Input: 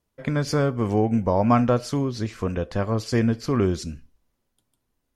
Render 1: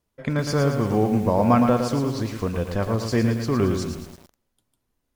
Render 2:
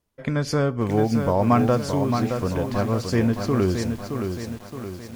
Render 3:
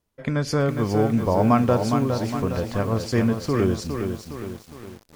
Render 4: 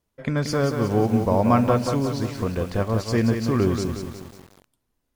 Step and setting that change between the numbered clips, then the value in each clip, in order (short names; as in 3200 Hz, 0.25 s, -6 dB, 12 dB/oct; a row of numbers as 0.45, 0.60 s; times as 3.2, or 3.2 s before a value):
lo-fi delay, time: 0.113, 0.62, 0.411, 0.181 s